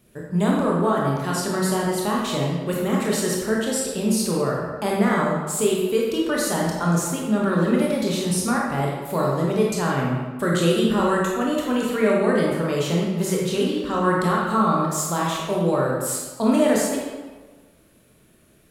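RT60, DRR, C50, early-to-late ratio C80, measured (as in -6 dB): 1.4 s, -3.5 dB, -0.5 dB, 2.5 dB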